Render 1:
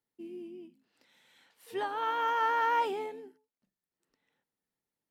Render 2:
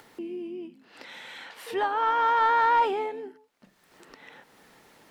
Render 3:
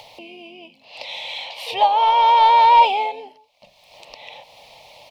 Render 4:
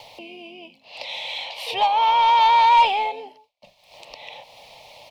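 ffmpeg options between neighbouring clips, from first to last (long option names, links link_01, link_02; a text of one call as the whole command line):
ffmpeg -i in.wav -filter_complex "[0:a]acompressor=mode=upward:threshold=-36dB:ratio=2.5,asplit=2[link_01][link_02];[link_02]highpass=frequency=720:poles=1,volume=10dB,asoftclip=type=tanh:threshold=-17.5dB[link_03];[link_01][link_03]amix=inputs=2:normalize=0,lowpass=frequency=1800:poles=1,volume=-6dB,volume=5.5dB" out.wav
ffmpeg -i in.wav -af "firequalizer=gain_entry='entry(120,0);entry(180,-12);entry(370,-17);entry(580,9);entry(1000,1);entry(1500,-26);entry(2300,7);entry(4200,8);entry(7400,-5)':delay=0.05:min_phase=1,volume=8.5dB" out.wav
ffmpeg -i in.wav -filter_complex "[0:a]agate=range=-33dB:threshold=-49dB:ratio=3:detection=peak,acrossover=split=130|910[link_01][link_02][link_03];[link_02]asoftclip=type=tanh:threshold=-23.5dB[link_04];[link_01][link_04][link_03]amix=inputs=3:normalize=0" out.wav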